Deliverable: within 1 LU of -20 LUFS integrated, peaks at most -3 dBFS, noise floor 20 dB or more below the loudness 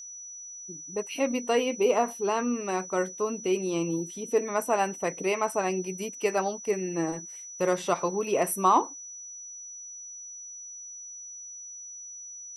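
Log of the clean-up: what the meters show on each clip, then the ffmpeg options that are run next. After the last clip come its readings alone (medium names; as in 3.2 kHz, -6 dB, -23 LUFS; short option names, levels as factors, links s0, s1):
steady tone 5.9 kHz; tone level -40 dBFS; loudness -28.0 LUFS; peak level -10.0 dBFS; loudness target -20.0 LUFS
-> -af "bandreject=f=5900:w=30"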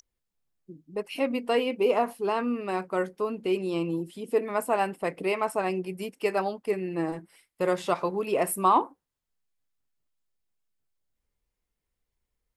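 steady tone not found; loudness -28.0 LUFS; peak level -10.0 dBFS; loudness target -20.0 LUFS
-> -af "volume=2.51,alimiter=limit=0.708:level=0:latency=1"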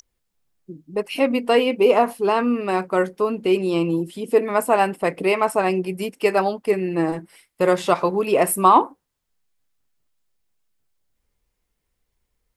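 loudness -20.5 LUFS; peak level -3.0 dBFS; noise floor -77 dBFS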